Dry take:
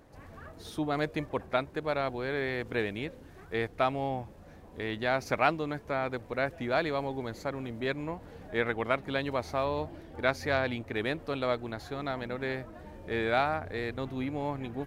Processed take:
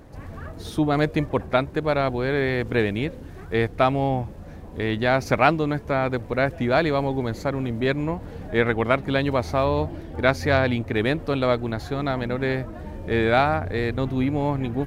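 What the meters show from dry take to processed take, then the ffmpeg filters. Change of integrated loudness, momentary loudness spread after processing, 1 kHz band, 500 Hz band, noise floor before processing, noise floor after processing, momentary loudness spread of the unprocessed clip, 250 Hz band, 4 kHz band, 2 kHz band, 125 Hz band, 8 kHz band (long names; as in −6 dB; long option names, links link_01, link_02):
+9.0 dB, 9 LU, +7.5 dB, +8.5 dB, −51 dBFS, −39 dBFS, 11 LU, +11.0 dB, +7.0 dB, +7.0 dB, +13.0 dB, can't be measured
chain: -af "lowshelf=frequency=280:gain=7.5,volume=7dB"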